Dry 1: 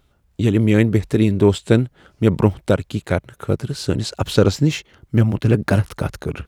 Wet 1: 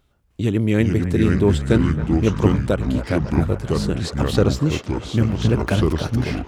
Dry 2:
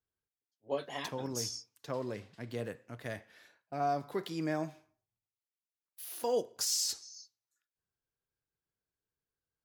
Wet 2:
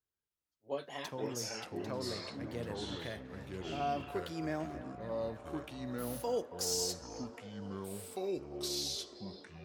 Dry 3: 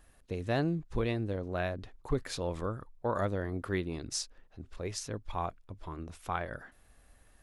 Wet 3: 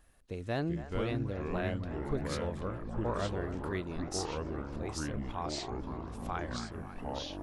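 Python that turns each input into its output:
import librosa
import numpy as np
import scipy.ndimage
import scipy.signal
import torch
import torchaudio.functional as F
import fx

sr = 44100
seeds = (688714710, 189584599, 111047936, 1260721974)

y = fx.echo_wet_bandpass(x, sr, ms=275, feedback_pct=80, hz=1100.0, wet_db=-12)
y = fx.echo_pitch(y, sr, ms=306, semitones=-4, count=3, db_per_echo=-3.0)
y = y * librosa.db_to_amplitude(-3.5)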